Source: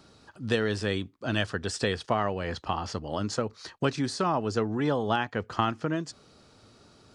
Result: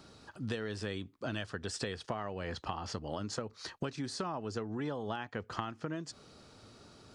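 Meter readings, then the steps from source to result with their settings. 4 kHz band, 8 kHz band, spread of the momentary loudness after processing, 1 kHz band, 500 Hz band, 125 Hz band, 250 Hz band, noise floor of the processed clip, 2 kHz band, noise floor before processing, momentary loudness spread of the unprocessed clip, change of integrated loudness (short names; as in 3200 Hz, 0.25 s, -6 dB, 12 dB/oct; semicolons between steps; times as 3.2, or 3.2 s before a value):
-8.5 dB, -5.5 dB, 16 LU, -10.5 dB, -10.0 dB, -9.0 dB, -9.5 dB, -63 dBFS, -10.0 dB, -58 dBFS, 6 LU, -9.5 dB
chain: compressor 5:1, threshold -35 dBFS, peak gain reduction 13.5 dB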